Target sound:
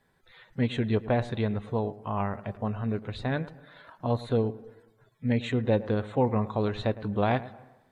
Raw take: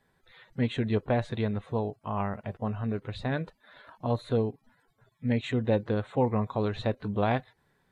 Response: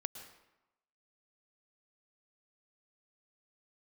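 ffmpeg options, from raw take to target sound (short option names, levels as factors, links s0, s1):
-filter_complex "[0:a]asplit=2[s0][s1];[1:a]atrim=start_sample=2205,lowpass=2200,adelay=108[s2];[s1][s2]afir=irnorm=-1:irlink=0,volume=0.188[s3];[s0][s3]amix=inputs=2:normalize=0,volume=1.12"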